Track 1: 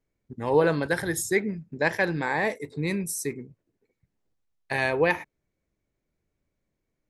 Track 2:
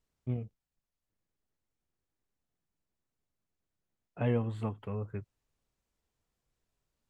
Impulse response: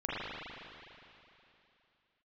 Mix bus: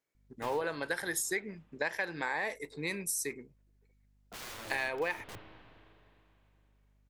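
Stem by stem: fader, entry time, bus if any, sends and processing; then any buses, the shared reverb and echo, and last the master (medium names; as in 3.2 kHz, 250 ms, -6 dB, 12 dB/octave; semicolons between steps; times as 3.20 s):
+0.5 dB, 0.00 s, no send, high-pass 840 Hz 6 dB/octave
-9.5 dB, 0.15 s, send -11 dB, waveshaping leveller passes 2; hum 50 Hz, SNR 26 dB; integer overflow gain 32.5 dB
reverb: on, RT60 3.0 s, pre-delay 37 ms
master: compression 6:1, threshold -30 dBFS, peak gain reduction 10.5 dB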